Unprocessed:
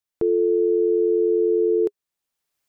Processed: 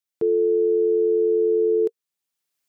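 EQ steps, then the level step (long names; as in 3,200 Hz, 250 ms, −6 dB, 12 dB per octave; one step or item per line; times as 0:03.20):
high-pass filter 150 Hz
parametric band 710 Hz −5.5 dB 2.9 octaves
dynamic equaliser 460 Hz, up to +8 dB, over −42 dBFS, Q 6.8
0.0 dB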